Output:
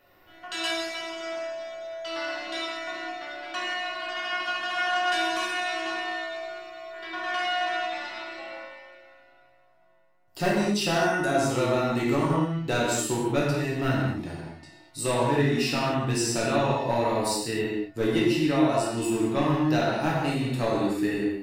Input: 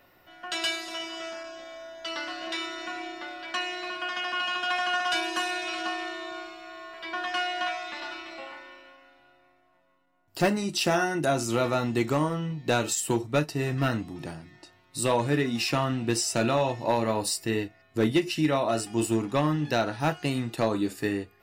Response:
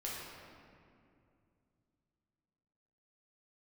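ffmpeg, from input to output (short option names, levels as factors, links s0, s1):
-filter_complex "[1:a]atrim=start_sample=2205,afade=t=out:st=0.27:d=0.01,atrim=end_sample=12348,asetrate=38367,aresample=44100[s0];[0:a][s0]afir=irnorm=-1:irlink=0"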